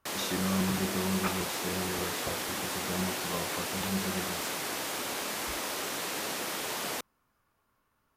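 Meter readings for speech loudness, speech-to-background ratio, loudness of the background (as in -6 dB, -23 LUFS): -35.5 LUFS, -2.5 dB, -33.0 LUFS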